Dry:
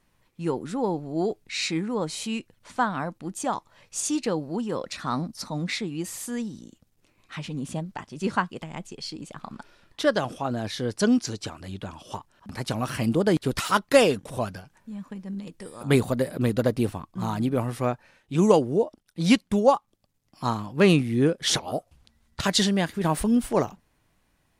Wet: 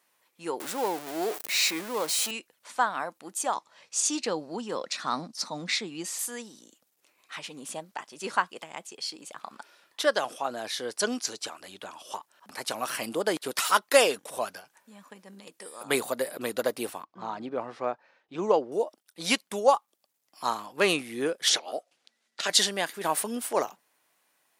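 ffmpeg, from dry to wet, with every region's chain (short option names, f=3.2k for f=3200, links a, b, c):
-filter_complex "[0:a]asettb=1/sr,asplit=3[a][b][c];[a]atrim=end=0.604[d];[b]atrim=start=0.6:end=2.31,asetpts=PTS-STARTPTS,afade=t=in:d=0.004:c=qsin,afade=t=out:st=1.706:d=0.004:c=qsin,aeval=exprs='val(0)+0.5*0.0299*sgn(val(0))':c=same,highpass=130[e];[c]atrim=start=2.306[f];[d][e]acrossfade=d=0.004:c1=hsin:c2=qsin[g];[g][f]acrossfade=d=0.004:c1=qsin:c2=hsin,asettb=1/sr,asplit=3[h][i][j];[h]atrim=end=3.564[k];[i]atrim=start=3.56:end=6.19,asetpts=PTS-STARTPTS,afade=t=in:d=0.004:c=qsin,afade=t=out:st=2.626:d=0.004:c=qsin,highpass=130,lowpass=5.7k,bass=f=250:g=11,treble=f=4k:g=6[l];[j]atrim=start=6.186[m];[k][l]acrossfade=d=0.004:c1=hsin:c2=qsin[n];[n][m]acrossfade=d=0.004:c1=qsin:c2=hsin,asettb=1/sr,asplit=3[o][p][q];[o]atrim=end=17.044[r];[p]atrim=start=17.04:end=18.72,asetpts=PTS-STARTPTS,afade=t=in:d=0.004:c=qsin,afade=t=out:st=1.676:d=0.004:c=qsin,lowpass=f=4.8k:w=0.5412,lowpass=f=4.8k:w=1.3066,equalizer=f=3.3k:t=o:w=2.2:g=-8.5[s];[q]atrim=start=18.716[t];[r][s]acrossfade=d=0.004:c1=hsin:c2=qsin[u];[u][t]acrossfade=d=0.004:c1=qsin:c2=hsin,asettb=1/sr,asplit=3[v][w][x];[v]atrim=end=21.494[y];[w]atrim=start=21.49:end=22.5,asetpts=PTS-STARTPTS,afade=t=in:d=0.004:c=qsin,afade=t=out:st=1.006:d=0.004:c=qsin,highpass=220,lowpass=6.6k,equalizer=f=1k:w=2:g=-8[z];[x]atrim=start=22.496[aa];[y][z]acrossfade=d=0.004:c1=hsin:c2=qsin[ab];[ab][aa]acrossfade=d=0.004:c1=qsin:c2=hsin,highpass=520,highshelf=f=8.9k:g=9.5"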